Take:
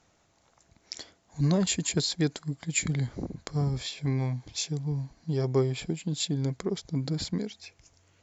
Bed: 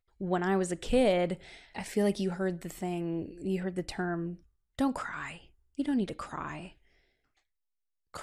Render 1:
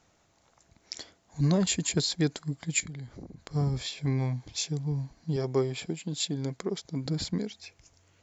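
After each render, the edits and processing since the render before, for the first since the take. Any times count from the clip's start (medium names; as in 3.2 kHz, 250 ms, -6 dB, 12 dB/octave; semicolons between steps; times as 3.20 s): 2.80–3.51 s: compression 2:1, threshold -47 dBFS; 5.36–7.06 s: high-pass 200 Hz 6 dB/octave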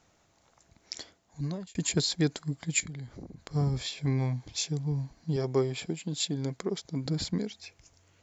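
0.98–1.75 s: fade out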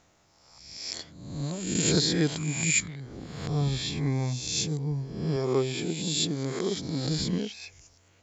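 reverse spectral sustain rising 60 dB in 0.97 s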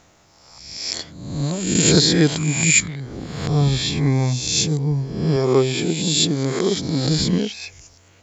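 trim +9.5 dB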